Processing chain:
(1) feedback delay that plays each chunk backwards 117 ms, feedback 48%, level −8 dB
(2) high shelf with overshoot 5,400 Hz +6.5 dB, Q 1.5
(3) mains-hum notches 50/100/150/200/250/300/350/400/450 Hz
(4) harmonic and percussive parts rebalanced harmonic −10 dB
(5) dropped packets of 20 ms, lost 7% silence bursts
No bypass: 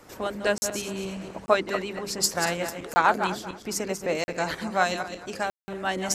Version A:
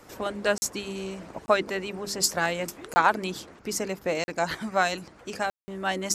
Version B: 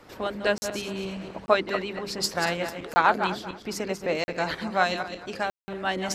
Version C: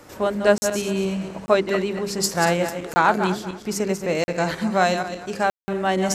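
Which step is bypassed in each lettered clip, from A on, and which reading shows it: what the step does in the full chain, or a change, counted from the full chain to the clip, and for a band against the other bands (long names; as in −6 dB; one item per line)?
1, change in momentary loudness spread +1 LU
2, 8 kHz band −7.5 dB
4, 125 Hz band +6.0 dB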